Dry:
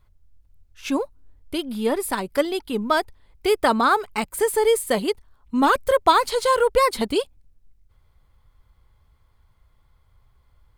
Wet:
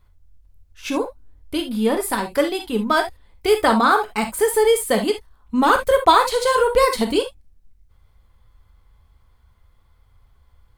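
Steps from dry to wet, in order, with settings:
reverb whose tail is shaped and stops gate 90 ms flat, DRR 4.5 dB
level +1.5 dB

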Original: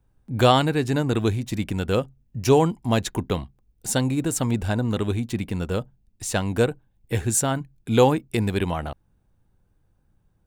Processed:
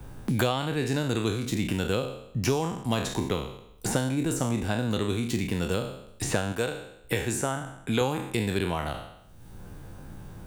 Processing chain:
peak hold with a decay on every bin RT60 0.54 s
0:06.52–0:08.01: low-shelf EQ 430 Hz −9.5 dB
multiband upward and downward compressor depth 100%
level −6 dB

